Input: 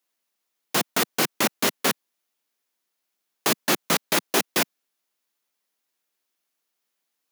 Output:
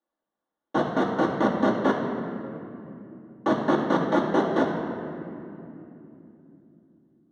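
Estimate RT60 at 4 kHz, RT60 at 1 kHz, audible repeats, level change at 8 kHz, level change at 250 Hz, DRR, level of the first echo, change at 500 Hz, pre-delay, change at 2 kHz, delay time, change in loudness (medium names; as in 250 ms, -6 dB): 1.7 s, 2.6 s, no echo, under -25 dB, +7.0 dB, -3.5 dB, no echo, +5.0 dB, 3 ms, -5.5 dB, no echo, -2.0 dB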